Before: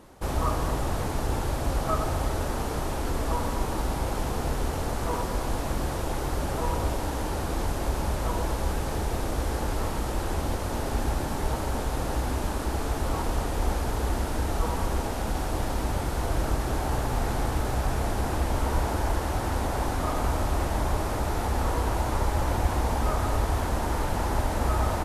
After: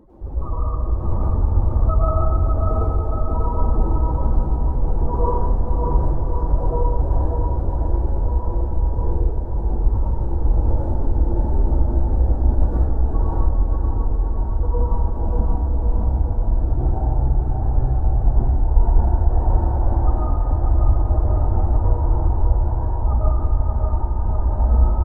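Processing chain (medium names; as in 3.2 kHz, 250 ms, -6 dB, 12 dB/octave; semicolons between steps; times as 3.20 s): spectral contrast enhancement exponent 2.4; random-step tremolo; bouncing-ball echo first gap 590 ms, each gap 0.85×, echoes 5; plate-style reverb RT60 1.6 s, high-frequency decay 0.9×, pre-delay 90 ms, DRR -7.5 dB; trim +3.5 dB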